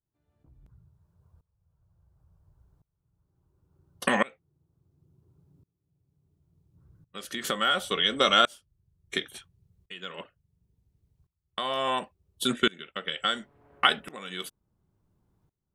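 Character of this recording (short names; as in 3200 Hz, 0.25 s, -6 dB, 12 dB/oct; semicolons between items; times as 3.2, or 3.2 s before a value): tremolo saw up 0.71 Hz, depth 95%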